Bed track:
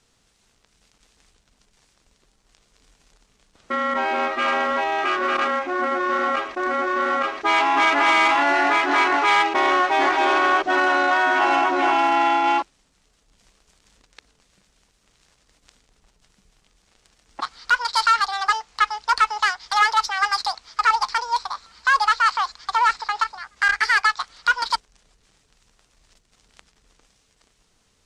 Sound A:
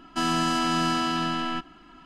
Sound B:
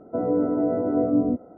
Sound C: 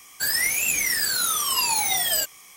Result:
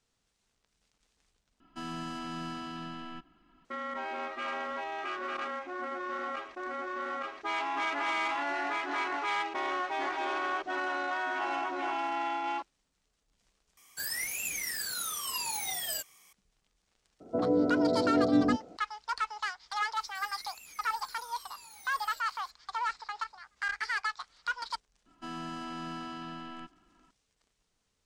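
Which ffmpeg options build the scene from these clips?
-filter_complex "[1:a]asplit=2[a][b];[3:a]asplit=2[c][d];[0:a]volume=-14.5dB[e];[a]bass=f=250:g=4,treble=f=4k:g=-4[f];[d]acompressor=threshold=-34dB:ratio=6:attack=3.2:release=140:knee=1:detection=peak[g];[b]highshelf=f=4.2k:g=-9.5[h];[e]asplit=3[i][j][k];[i]atrim=end=1.604[l];[f]atrim=end=2.05,asetpts=PTS-STARTPTS,volume=-15dB[m];[j]atrim=start=3.646:end=13.774[n];[c]atrim=end=2.56,asetpts=PTS-STARTPTS,volume=-12dB[o];[k]atrim=start=16.326[p];[2:a]atrim=end=1.57,asetpts=PTS-STARTPTS,volume=-4dB,afade=t=in:d=0.004:c=hsin,afade=t=out:st=1.566:d=0.004:c=hsin,adelay=17200[q];[g]atrim=end=2.56,asetpts=PTS-STARTPTS,volume=-15.5dB,afade=t=in:d=0.004:c=hsin,afade=t=out:st=2.556:d=0.004:c=hsin,adelay=19950[r];[h]atrim=end=2.05,asetpts=PTS-STARTPTS,volume=-14.5dB,afade=t=in:d=0.004:c=hsin,afade=t=out:st=2.046:d=0.004:c=hsin,adelay=25060[s];[l][m]acrossfade=d=0.004:c1=hsin:c2=hsin[t];[t][n]acrossfade=d=0.004:c1=hsin:c2=hsin[u];[u][o]acrossfade=d=0.004:c1=hsin:c2=hsin[v];[v][p]acrossfade=d=0.004:c1=hsin:c2=hsin[w];[w][q][r][s]amix=inputs=4:normalize=0"

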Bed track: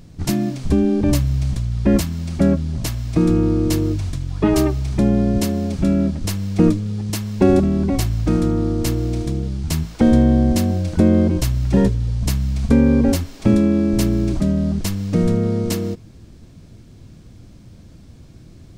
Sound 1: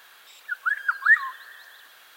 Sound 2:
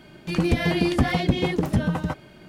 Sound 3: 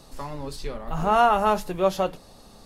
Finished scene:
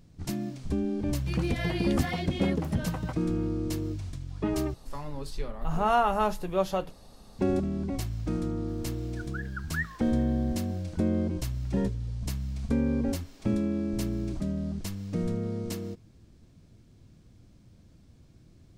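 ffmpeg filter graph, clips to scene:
-filter_complex "[0:a]volume=-13dB[a];[3:a]lowshelf=f=140:g=7[b];[a]asplit=2[c][d];[c]atrim=end=4.744[e];[b]atrim=end=2.65,asetpts=PTS-STARTPTS,volume=-5.5dB[f];[d]atrim=start=7.386[g];[2:a]atrim=end=2.48,asetpts=PTS-STARTPTS,volume=-8dB,afade=t=in:d=0.004:c=hsin,afade=t=out:st=2.476:d=0.004:c=hsin,adelay=990[h];[1:a]atrim=end=2.16,asetpts=PTS-STARTPTS,volume=-16dB,afade=t=in:d=0.004:c=hsin,afade=t=out:st=2.156:d=0.004:c=hsin,adelay=8680[i];[e][f]acrossfade=d=0.004:c1=hsin:c2=hsin[j];[j][g]acrossfade=d=0.004:c1=hsin:c2=hsin[k];[k][h][i]amix=inputs=3:normalize=0"

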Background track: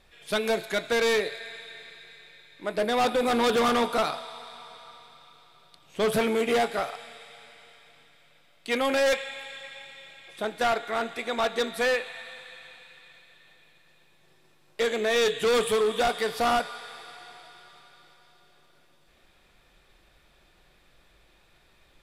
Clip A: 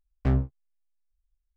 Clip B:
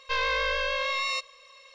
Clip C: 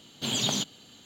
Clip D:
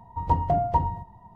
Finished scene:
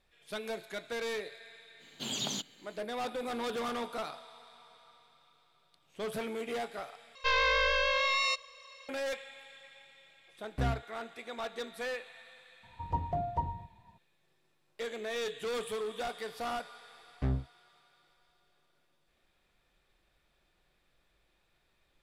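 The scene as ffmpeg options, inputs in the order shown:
-filter_complex "[1:a]asplit=2[a][b];[0:a]volume=-12.5dB[c];[3:a]equalizer=f=93:w=1.5:g=-8.5[d];[c]asplit=2[e][f];[e]atrim=end=7.154[g];[2:a]atrim=end=1.74,asetpts=PTS-STARTPTS,volume=-0.5dB[h];[f]atrim=start=8.886[i];[d]atrim=end=1.05,asetpts=PTS-STARTPTS,volume=-7.5dB,afade=t=in:d=0.05,afade=t=out:st=1:d=0.05,adelay=1780[j];[a]atrim=end=1.56,asetpts=PTS-STARTPTS,volume=-9dB,afade=t=in:d=0.004:c=hsin,afade=t=out:st=1.556:d=0.004:c=hsin,adelay=10330[k];[4:a]atrim=end=1.35,asetpts=PTS-STARTPTS,volume=-10.5dB,afade=t=in:d=0.004:c=hsin,afade=t=out:st=1.346:d=0.004:c=hsin,adelay=12630[l];[b]atrim=end=1.56,asetpts=PTS-STARTPTS,volume=-8dB,afade=t=in:d=0.004:c=hsin,afade=t=out:st=1.556:d=0.004:c=hsin,adelay=16970[m];[g][h]acrossfade=d=0.004:c1=hsin:c2=hsin[n];[n][i]acrossfade=d=0.004:c1=hsin:c2=hsin[o];[o][j][k][l][m]amix=inputs=5:normalize=0"

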